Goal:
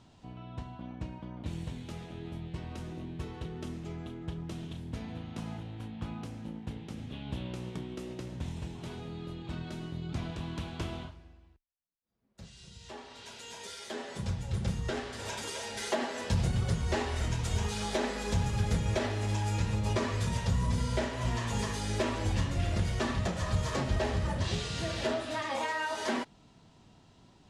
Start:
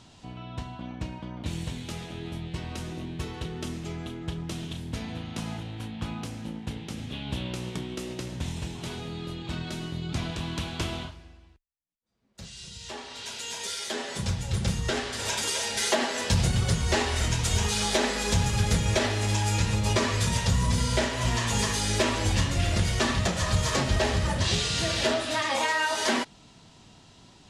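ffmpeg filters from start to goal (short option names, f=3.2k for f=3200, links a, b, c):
-af "highshelf=f=2k:g=-8.5,volume=-4.5dB"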